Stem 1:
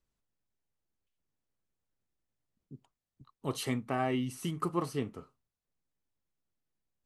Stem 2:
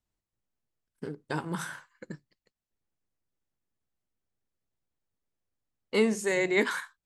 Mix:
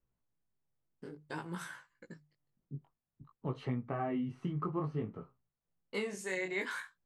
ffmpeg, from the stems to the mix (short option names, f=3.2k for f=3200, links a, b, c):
-filter_complex "[0:a]lowpass=1.7k,equalizer=f=150:t=o:w=0.41:g=8.5,volume=2.5dB[a];[1:a]bandreject=f=50:t=h:w=6,bandreject=f=100:t=h:w=6,bandreject=f=150:t=h:w=6,agate=range=-33dB:threshold=-58dB:ratio=3:detection=peak,adynamicequalizer=threshold=0.00708:dfrequency=2200:dqfactor=1:tfrequency=2200:tqfactor=1:attack=5:release=100:ratio=0.375:range=2:mode=boostabove:tftype=bell,volume=-6dB[b];[a][b]amix=inputs=2:normalize=0,flanger=delay=16:depth=5.5:speed=0.55,acompressor=threshold=-33dB:ratio=3"